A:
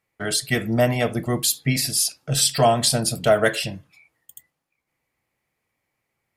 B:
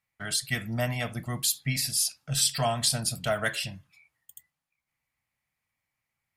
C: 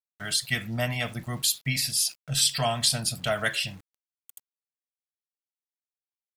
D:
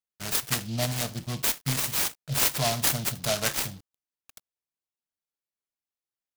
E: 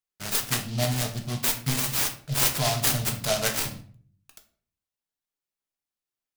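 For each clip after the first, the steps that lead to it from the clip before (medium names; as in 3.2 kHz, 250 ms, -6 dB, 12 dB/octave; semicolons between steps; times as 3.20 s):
peaking EQ 400 Hz -14 dB 1.3 oct; trim -5 dB
dynamic bell 3.1 kHz, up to +5 dB, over -43 dBFS, Q 1; small samples zeroed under -48 dBFS
delay time shaken by noise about 3.9 kHz, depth 0.15 ms
simulated room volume 46 m³, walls mixed, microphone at 0.39 m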